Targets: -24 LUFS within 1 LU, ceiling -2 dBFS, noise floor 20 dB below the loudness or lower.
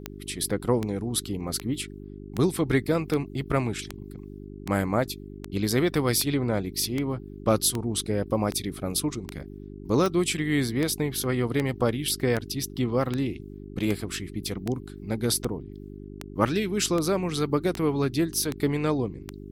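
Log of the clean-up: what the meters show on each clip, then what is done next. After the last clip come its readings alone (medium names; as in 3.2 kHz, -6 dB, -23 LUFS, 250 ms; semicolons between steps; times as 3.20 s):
clicks found 26; hum 50 Hz; highest harmonic 400 Hz; hum level -38 dBFS; loudness -27.0 LUFS; peak level -8.5 dBFS; loudness target -24.0 LUFS
-> de-click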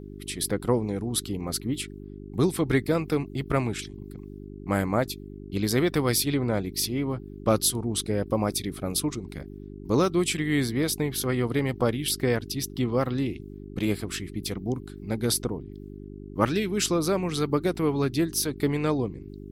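clicks found 0; hum 50 Hz; highest harmonic 400 Hz; hum level -38 dBFS
-> de-hum 50 Hz, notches 8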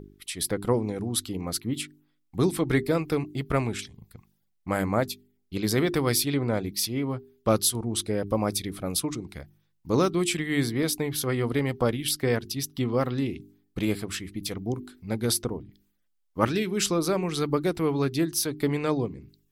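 hum not found; loudness -27.5 LUFS; peak level -9.0 dBFS; loudness target -24.0 LUFS
-> trim +3.5 dB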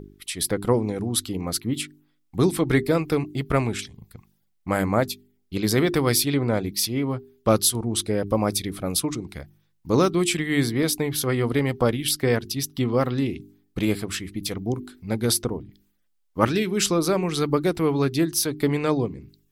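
loudness -24.0 LUFS; peak level -5.5 dBFS; noise floor -68 dBFS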